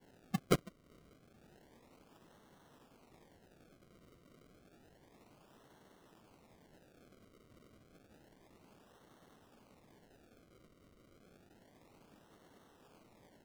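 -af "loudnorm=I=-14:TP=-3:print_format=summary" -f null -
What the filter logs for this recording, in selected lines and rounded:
Input Integrated:    -37.4 LUFS
Input True Peak:     -14.8 dBTP
Input LRA:             0.5 LU
Input Threshold:     -60.8 LUFS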